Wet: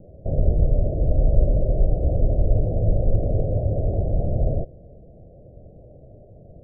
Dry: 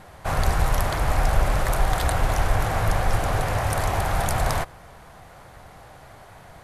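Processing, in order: steep low-pass 620 Hz 72 dB/oct; gain +3.5 dB

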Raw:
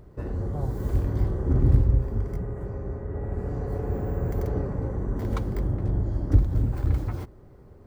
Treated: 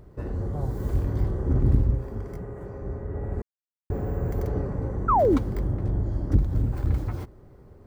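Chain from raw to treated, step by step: 1.94–2.82 low shelf 150 Hz -8.5 dB; 3.42–3.9 mute; 5.08–5.38 painted sound fall 240–1400 Hz -19 dBFS; core saturation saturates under 120 Hz

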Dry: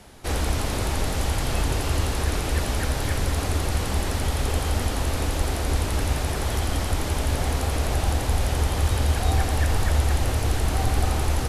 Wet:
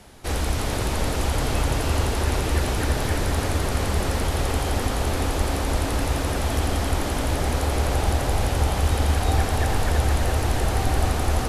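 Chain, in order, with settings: tape echo 0.333 s, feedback 86%, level -3 dB, low-pass 2400 Hz

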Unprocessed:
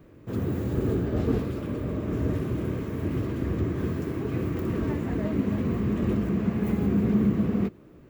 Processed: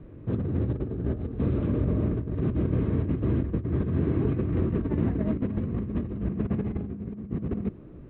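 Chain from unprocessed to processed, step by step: steep low-pass 4000 Hz 96 dB/oct; tilt -2.5 dB/oct; negative-ratio compressor -23 dBFS, ratio -0.5; gain -3.5 dB

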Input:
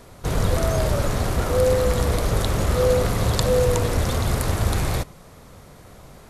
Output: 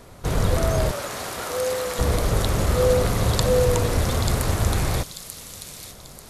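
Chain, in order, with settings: 0.91–1.99 HPF 870 Hz 6 dB/oct; on a send: thin delay 0.889 s, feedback 38%, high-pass 3900 Hz, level -4 dB

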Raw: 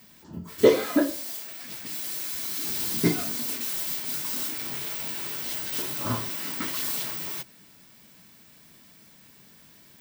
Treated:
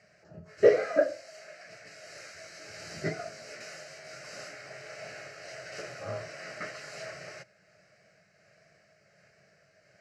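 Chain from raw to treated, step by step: repeated pitch sweeps -1 st, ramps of 0.777 s; speaker cabinet 120–5400 Hz, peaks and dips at 350 Hz -6 dB, 640 Hz +10 dB, 1100 Hz -3 dB; fixed phaser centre 940 Hz, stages 6

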